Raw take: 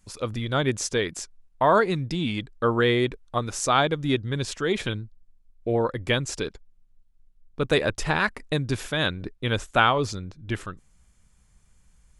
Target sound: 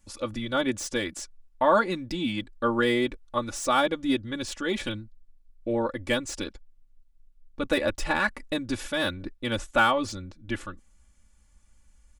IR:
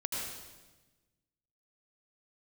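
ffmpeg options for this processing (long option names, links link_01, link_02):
-filter_complex "[0:a]aecho=1:1:3.5:0.88,acrossover=split=2300[link_01][link_02];[link_02]asoftclip=type=hard:threshold=-27.5dB[link_03];[link_01][link_03]amix=inputs=2:normalize=0,volume=-4dB"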